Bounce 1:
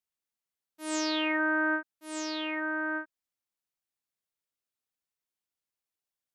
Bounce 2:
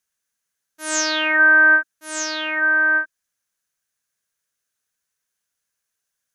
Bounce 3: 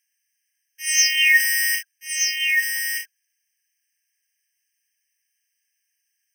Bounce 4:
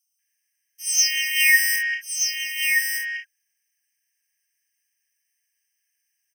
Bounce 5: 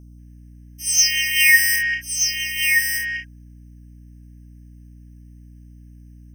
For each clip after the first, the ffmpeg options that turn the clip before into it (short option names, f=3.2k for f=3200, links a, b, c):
-af "equalizer=f=315:t=o:w=0.33:g=-8,equalizer=f=800:t=o:w=0.33:g=-5,equalizer=f=1.6k:t=o:w=0.33:g=10,equalizer=f=6.3k:t=o:w=0.33:g=9,equalizer=f=10k:t=o:w=0.33:g=6,volume=8.5dB"
-af "acrusher=bits=3:mode=log:mix=0:aa=0.000001,afftfilt=real='re*eq(mod(floor(b*sr/1024/1600),2),1)':imag='im*eq(mod(floor(b*sr/1024/1600),2),1)':win_size=1024:overlap=0.75,volume=7.5dB"
-filter_complex "[0:a]acrossover=split=3500[a][b];[a]adelay=190[c];[c][b]amix=inputs=2:normalize=0"
-af "aeval=exprs='val(0)+0.00562*(sin(2*PI*60*n/s)+sin(2*PI*2*60*n/s)/2+sin(2*PI*3*60*n/s)/3+sin(2*PI*4*60*n/s)/4+sin(2*PI*5*60*n/s)/5)':c=same,volume=3dB"